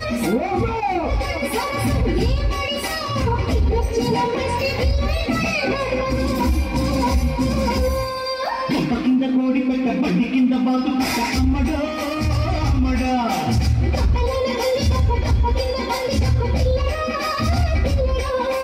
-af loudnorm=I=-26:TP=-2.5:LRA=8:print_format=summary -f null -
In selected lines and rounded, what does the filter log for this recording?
Input Integrated:    -20.4 LUFS
Input True Peak:      -9.6 dBTP
Input LRA:             1.2 LU
Input Threshold:     -30.4 LUFS